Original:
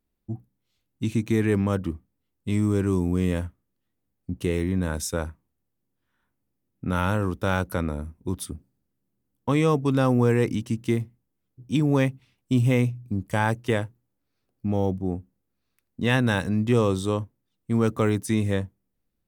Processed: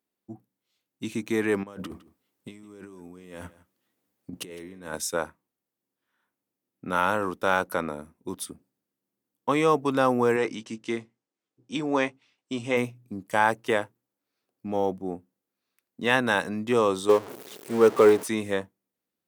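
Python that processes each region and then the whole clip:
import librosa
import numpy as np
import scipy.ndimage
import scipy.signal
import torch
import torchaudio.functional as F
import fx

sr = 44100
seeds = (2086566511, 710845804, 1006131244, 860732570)

y = fx.chain(x, sr, fx.over_compress(threshold_db=-31.0, ratio=-0.5),
    fx.echo_single(ms=159, db=-18.5), at=(1.63, 4.95))
y = fx.chain(y, sr, fx.lowpass(hz=7800.0, slope=24),
    fx.low_shelf(hz=160.0, db=-10.5),
    fx.doubler(ms=18.0, db=-11), at=(10.36, 12.77))
y = fx.chain(y, sr, fx.zero_step(step_db=-27.0),
    fx.peak_eq(hz=410.0, db=10.0, octaves=0.52),
    fx.upward_expand(threshold_db=-25.0, expansion=1.5), at=(17.09, 18.28))
y = scipy.signal.sosfilt(scipy.signal.bessel(2, 340.0, 'highpass', norm='mag', fs=sr, output='sos'), y)
y = fx.dynamic_eq(y, sr, hz=970.0, q=0.7, threshold_db=-36.0, ratio=4.0, max_db=5)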